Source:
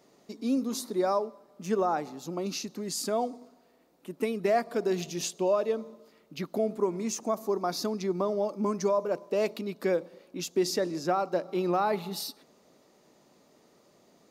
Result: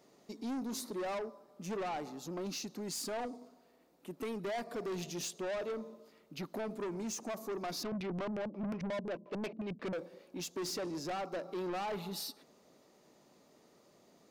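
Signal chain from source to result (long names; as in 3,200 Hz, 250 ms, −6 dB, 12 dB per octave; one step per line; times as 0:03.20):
0:07.83–0:09.93: auto-filter low-pass square 5.6 Hz 220–2,600 Hz
soft clipping −32 dBFS, distortion −7 dB
level −3 dB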